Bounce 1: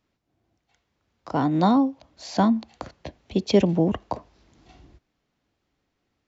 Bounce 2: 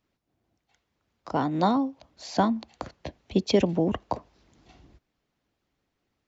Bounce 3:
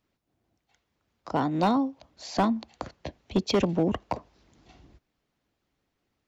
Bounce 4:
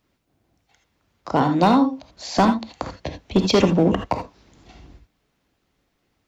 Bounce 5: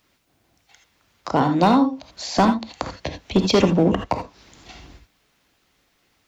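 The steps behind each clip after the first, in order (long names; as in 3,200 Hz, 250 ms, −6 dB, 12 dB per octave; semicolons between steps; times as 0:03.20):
harmonic and percussive parts rebalanced harmonic −6 dB
hard clipping −16.5 dBFS, distortion −15 dB
reverb whose tail is shaped and stops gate 100 ms rising, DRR 5 dB; level +7 dB
one half of a high-frequency compander encoder only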